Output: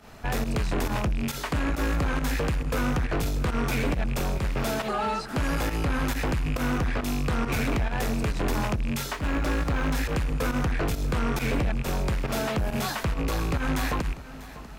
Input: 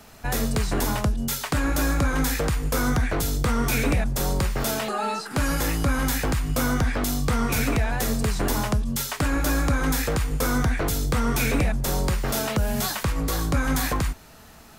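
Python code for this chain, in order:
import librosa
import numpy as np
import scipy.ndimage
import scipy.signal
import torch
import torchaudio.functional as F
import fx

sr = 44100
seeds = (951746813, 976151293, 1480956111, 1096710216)

y = fx.rattle_buzz(x, sr, strikes_db=-29.0, level_db=-23.0)
y = fx.high_shelf(y, sr, hz=4900.0, db=-11.5)
y = 10.0 ** (-24.5 / 20.0) * np.tanh(y / 10.0 ** (-24.5 / 20.0))
y = fx.volume_shaper(y, sr, bpm=137, per_beat=1, depth_db=-12, release_ms=74.0, shape='fast start')
y = y + 10.0 ** (-16.5 / 20.0) * np.pad(y, (int(644 * sr / 1000.0), 0))[:len(y)]
y = fx.resample_linear(y, sr, factor=2, at=(9.13, 9.95))
y = y * 10.0 ** (2.5 / 20.0)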